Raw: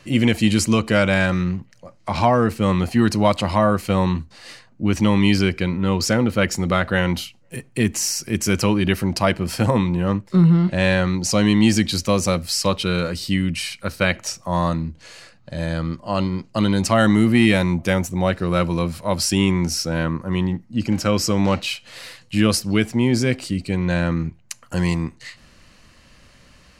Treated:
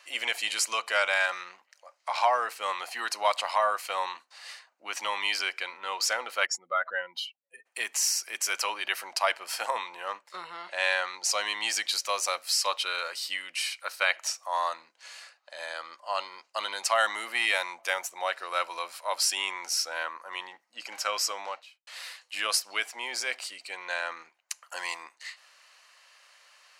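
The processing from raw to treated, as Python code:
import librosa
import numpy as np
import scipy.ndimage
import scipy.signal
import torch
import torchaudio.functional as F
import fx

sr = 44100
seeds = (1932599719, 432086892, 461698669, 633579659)

y = fx.spec_expand(x, sr, power=2.0, at=(6.45, 7.65), fade=0.02)
y = fx.studio_fade_out(y, sr, start_s=21.2, length_s=0.67)
y = scipy.signal.sosfilt(scipy.signal.butter(4, 720.0, 'highpass', fs=sr, output='sos'), y)
y = y * 10.0 ** (-3.5 / 20.0)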